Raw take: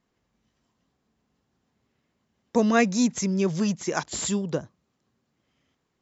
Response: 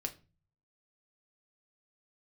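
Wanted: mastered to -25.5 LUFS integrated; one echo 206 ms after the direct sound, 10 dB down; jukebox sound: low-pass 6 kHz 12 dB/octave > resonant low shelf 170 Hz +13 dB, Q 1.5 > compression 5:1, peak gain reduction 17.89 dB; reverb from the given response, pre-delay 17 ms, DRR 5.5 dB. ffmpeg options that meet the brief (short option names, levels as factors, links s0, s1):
-filter_complex "[0:a]aecho=1:1:206:0.316,asplit=2[s0][s1];[1:a]atrim=start_sample=2205,adelay=17[s2];[s1][s2]afir=irnorm=-1:irlink=0,volume=0.562[s3];[s0][s3]amix=inputs=2:normalize=0,lowpass=6000,lowshelf=f=170:t=q:w=1.5:g=13,acompressor=threshold=0.02:ratio=5,volume=3.55"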